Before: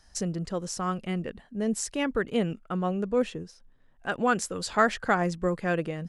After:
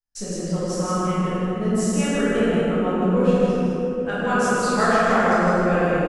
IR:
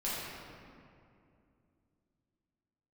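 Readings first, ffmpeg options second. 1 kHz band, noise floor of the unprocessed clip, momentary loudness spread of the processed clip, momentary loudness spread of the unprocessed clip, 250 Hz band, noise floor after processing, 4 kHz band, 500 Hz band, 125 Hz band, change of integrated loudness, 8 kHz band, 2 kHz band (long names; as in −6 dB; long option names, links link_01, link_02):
+7.5 dB, −58 dBFS, 7 LU, 9 LU, +9.0 dB, −30 dBFS, +5.0 dB, +9.0 dB, +9.0 dB, +8.0 dB, +4.5 dB, +7.0 dB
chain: -filter_complex "[0:a]agate=range=-35dB:threshold=-50dB:ratio=16:detection=peak,aecho=1:1:157:0.668[link_01];[1:a]atrim=start_sample=2205,asetrate=24255,aresample=44100[link_02];[link_01][link_02]afir=irnorm=-1:irlink=0,volume=-4dB"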